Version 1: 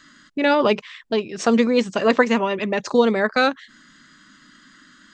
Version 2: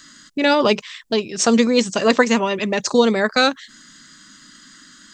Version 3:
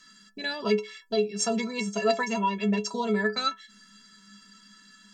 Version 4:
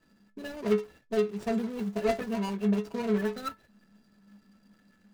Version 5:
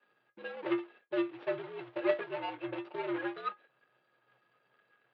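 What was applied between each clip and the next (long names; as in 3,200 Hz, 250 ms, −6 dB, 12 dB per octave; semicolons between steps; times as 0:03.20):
bass and treble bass +2 dB, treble +13 dB; level +1 dB
in parallel at −2.5 dB: downward compressor, threshold −25 dBFS, peak gain reduction 15 dB; on the sum: stiff-string resonator 200 Hz, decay 0.29 s, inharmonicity 0.03
running median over 41 samples
single-sideband voice off tune −77 Hz 470–3,500 Hz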